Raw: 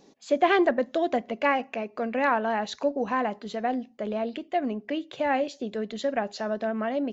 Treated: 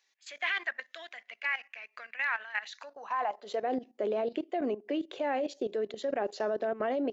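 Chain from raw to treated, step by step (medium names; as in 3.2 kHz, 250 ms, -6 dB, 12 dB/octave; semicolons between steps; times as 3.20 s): vibrato 5.4 Hz 12 cents; high-pass sweep 1.9 kHz -> 370 Hz, 2.72–3.72 s; level held to a coarse grid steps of 15 dB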